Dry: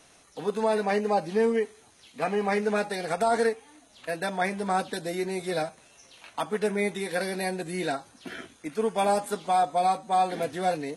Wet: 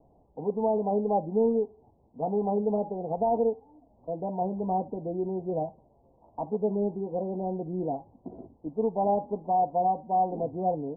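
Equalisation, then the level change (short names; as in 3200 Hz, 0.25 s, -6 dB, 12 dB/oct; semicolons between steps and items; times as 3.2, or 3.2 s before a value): steep low-pass 930 Hz 72 dB/oct; low shelf 120 Hz +10.5 dB; -1.5 dB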